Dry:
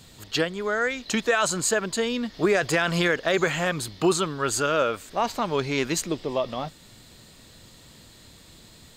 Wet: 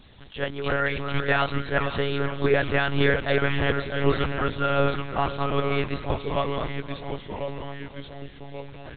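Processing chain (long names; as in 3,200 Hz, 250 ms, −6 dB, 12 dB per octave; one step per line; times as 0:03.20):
delay with pitch and tempo change per echo 261 ms, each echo −2 semitones, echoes 3, each echo −6 dB
one-pitch LPC vocoder at 8 kHz 140 Hz
single-tap delay 522 ms −14 dB
level that may rise only so fast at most 210 dB per second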